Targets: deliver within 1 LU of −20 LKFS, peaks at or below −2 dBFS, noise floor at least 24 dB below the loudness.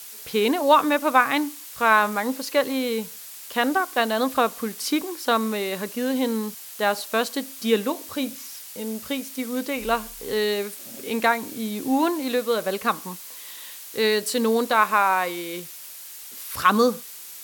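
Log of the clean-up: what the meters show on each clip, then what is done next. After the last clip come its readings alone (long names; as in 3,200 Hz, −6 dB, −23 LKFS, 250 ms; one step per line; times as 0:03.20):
background noise floor −40 dBFS; target noise floor −48 dBFS; integrated loudness −23.5 LKFS; sample peak −3.0 dBFS; target loudness −20.0 LKFS
→ broadband denoise 8 dB, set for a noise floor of −40 dBFS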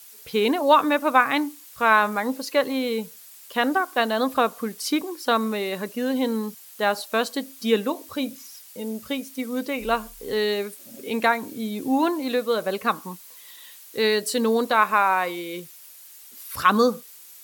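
background noise floor −46 dBFS; target noise floor −48 dBFS
→ broadband denoise 6 dB, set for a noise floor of −46 dBFS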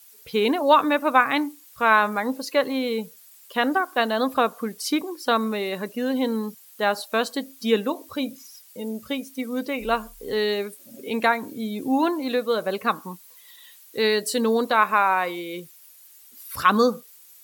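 background noise floor −50 dBFS; integrated loudness −23.5 LKFS; sample peak −3.0 dBFS; target loudness −20.0 LKFS
→ level +3.5 dB
brickwall limiter −2 dBFS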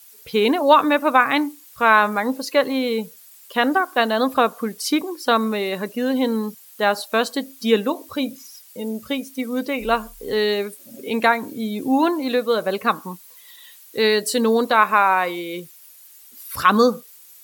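integrated loudness −20.0 LKFS; sample peak −2.0 dBFS; background noise floor −47 dBFS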